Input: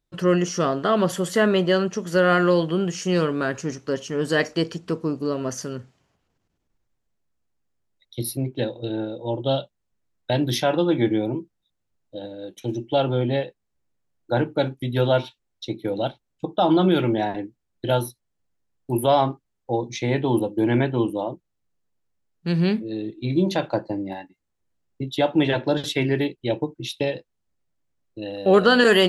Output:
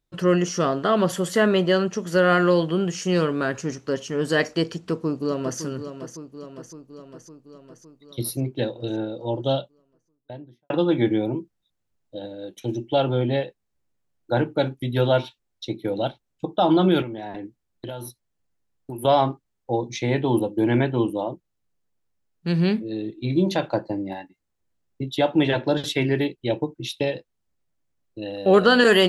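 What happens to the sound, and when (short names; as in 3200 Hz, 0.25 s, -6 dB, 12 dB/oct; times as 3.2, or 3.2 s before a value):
4.72–5.6 echo throw 0.56 s, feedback 65%, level -10 dB
9.38–10.7 studio fade out
17.02–19.05 compressor 10:1, threshold -29 dBFS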